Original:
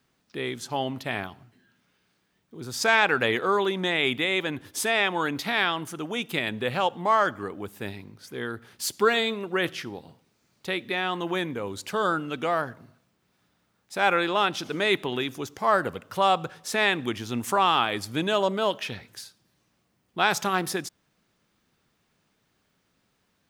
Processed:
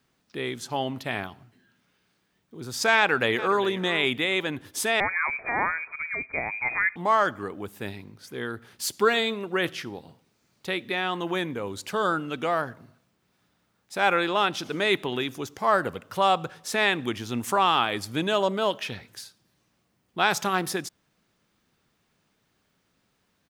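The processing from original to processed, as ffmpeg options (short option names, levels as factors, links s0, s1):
-filter_complex "[0:a]asplit=2[s0][s1];[s1]afade=t=in:st=2.97:d=0.01,afade=t=out:st=3.64:d=0.01,aecho=0:1:410|820:0.188365|0.0282547[s2];[s0][s2]amix=inputs=2:normalize=0,asettb=1/sr,asplit=3[s3][s4][s5];[s3]atrim=end=5.004[s6];[s4]atrim=start=5:end=6.96,asetpts=PTS-STARTPTS,afade=t=in:d=0.004:c=qsin,afade=t=out:st=1.956:d=0.004:c=qsin,lowpass=f=2200:t=q:w=0.5098,lowpass=f=2200:t=q:w=0.6013,lowpass=f=2200:t=q:w=0.9,lowpass=f=2200:t=q:w=2.563,afreqshift=-2600[s7];[s5]atrim=start=6.956[s8];[s6][s7]acrossfade=d=0.004:c1=hsin:c2=qsin[s9];[s9][s8]acrossfade=d=0.004:c1=qsin:c2=hsin"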